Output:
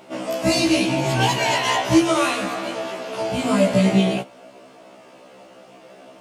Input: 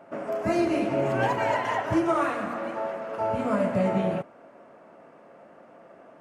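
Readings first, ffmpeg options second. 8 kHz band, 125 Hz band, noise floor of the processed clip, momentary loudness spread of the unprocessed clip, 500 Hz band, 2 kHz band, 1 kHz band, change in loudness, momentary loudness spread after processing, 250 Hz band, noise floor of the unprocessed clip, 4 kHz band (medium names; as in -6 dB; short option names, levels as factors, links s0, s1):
no reading, +8.5 dB, -47 dBFS, 8 LU, +4.0 dB, +8.0 dB, +4.0 dB, +6.5 dB, 11 LU, +7.5 dB, -52 dBFS, +19.5 dB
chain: -af "highshelf=f=2400:t=q:w=1.5:g=13,afftfilt=real='re*1.73*eq(mod(b,3),0)':imag='im*1.73*eq(mod(b,3),0)':win_size=2048:overlap=0.75,volume=2.66"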